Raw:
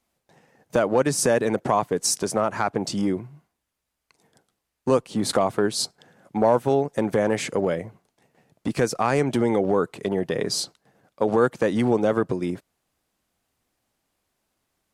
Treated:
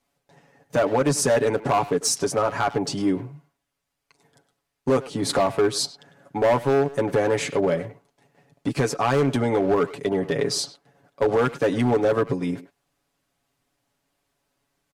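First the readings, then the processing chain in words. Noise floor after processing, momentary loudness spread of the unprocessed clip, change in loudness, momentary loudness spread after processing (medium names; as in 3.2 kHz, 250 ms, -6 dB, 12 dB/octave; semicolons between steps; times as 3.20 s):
-80 dBFS, 9 LU, +0.5 dB, 9 LU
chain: treble shelf 8.8 kHz -5 dB; comb 7.1 ms, depth 73%; hard clipper -14.5 dBFS, distortion -13 dB; speakerphone echo 100 ms, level -12 dB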